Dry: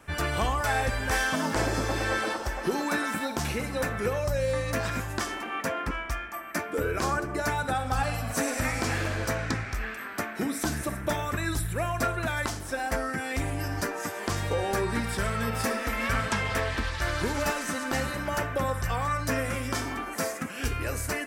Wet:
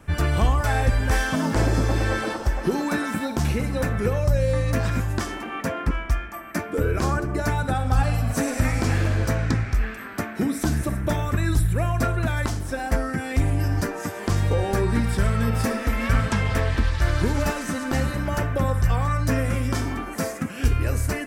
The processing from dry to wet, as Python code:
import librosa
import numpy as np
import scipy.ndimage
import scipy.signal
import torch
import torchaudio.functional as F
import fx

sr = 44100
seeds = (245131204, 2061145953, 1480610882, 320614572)

y = fx.low_shelf(x, sr, hz=290.0, db=12.0)